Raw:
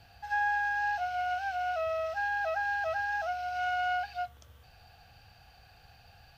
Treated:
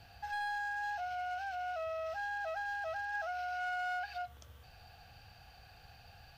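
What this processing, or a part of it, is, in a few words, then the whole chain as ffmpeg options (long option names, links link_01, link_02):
clipper into limiter: -filter_complex "[0:a]asoftclip=type=hard:threshold=-26.5dB,alimiter=level_in=9.5dB:limit=-24dB:level=0:latency=1:release=85,volume=-9.5dB,asettb=1/sr,asplit=3[link_01][link_02][link_03];[link_01]atrim=end=3.144[link_04];[link_02]atrim=start=3.14:end=4.22,asetpts=PTS-STARTPTS,afade=type=in:duration=0.004:curve=qsin,afade=type=out:start_time=1.076:duration=0.004:curve=qsin,equalizer=frequency=100:width_type=o:width=0.67:gain=-7,equalizer=frequency=250:width_type=o:width=0.67:gain=-8,equalizer=frequency=1600:width_type=o:width=0.67:gain=4[link_05];[link_03]atrim=start=4.216[link_06];[link_04][link_05]acrossfade=duration=0.004:curve1=hsin:curve2=qsin[link_07];[link_07][link_06]acrossfade=duration=0.004:curve1=qsin:curve2=hsin"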